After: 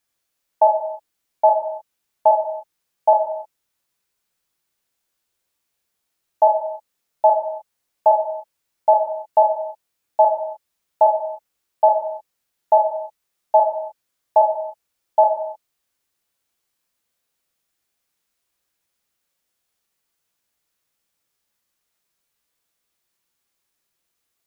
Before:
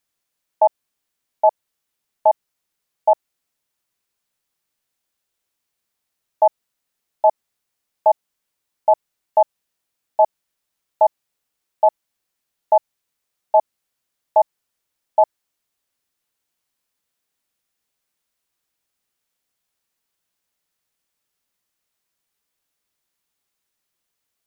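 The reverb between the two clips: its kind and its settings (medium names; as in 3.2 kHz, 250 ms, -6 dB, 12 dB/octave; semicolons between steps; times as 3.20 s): gated-style reverb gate 330 ms falling, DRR 2 dB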